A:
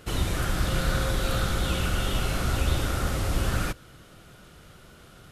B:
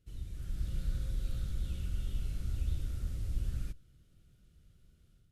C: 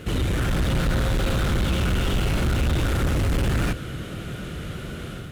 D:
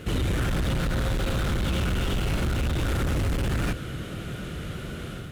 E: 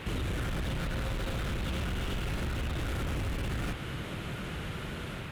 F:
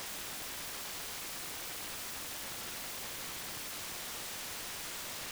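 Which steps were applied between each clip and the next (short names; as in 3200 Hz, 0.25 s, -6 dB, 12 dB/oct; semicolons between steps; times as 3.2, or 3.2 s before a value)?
passive tone stack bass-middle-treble 10-0-1; AGC gain up to 7 dB; gain -7.5 dB
bell 5000 Hz -6 dB 0.72 oct; overdrive pedal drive 46 dB, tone 1300 Hz, clips at -22 dBFS; gain +8.5 dB
limiter -18.5 dBFS, peak gain reduction 4.5 dB; gain -1.5 dB
compressor 2.5:1, threshold -29 dBFS, peak gain reduction 4.5 dB; band noise 410–3100 Hz -43 dBFS; gain -3.5 dB
wrapped overs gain 42 dB; gain +4.5 dB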